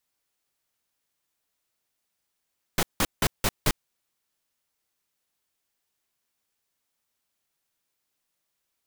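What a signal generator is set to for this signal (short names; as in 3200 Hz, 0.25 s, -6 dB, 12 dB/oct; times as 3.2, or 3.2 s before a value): noise bursts pink, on 0.05 s, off 0.17 s, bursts 5, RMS -22 dBFS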